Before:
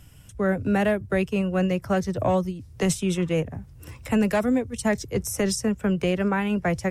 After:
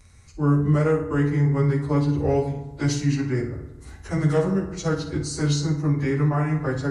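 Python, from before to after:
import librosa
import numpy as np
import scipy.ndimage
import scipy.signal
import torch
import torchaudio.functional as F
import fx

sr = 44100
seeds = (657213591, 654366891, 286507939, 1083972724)

y = fx.pitch_bins(x, sr, semitones=-5.0)
y = fx.room_flutter(y, sr, wall_m=9.5, rt60_s=0.3)
y = fx.rev_fdn(y, sr, rt60_s=1.1, lf_ratio=1.05, hf_ratio=0.5, size_ms=21.0, drr_db=5.5)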